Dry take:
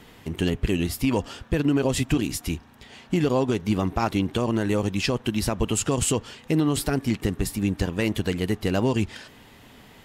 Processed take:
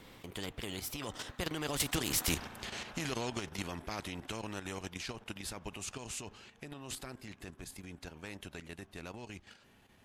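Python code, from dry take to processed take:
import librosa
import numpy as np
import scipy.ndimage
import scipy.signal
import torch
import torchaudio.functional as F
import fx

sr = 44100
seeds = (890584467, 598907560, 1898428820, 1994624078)

y = fx.doppler_pass(x, sr, speed_mps=29, closest_m=6.0, pass_at_s=2.32)
y = fx.level_steps(y, sr, step_db=9)
y = fx.spectral_comp(y, sr, ratio=2.0)
y = y * librosa.db_to_amplitude(1.0)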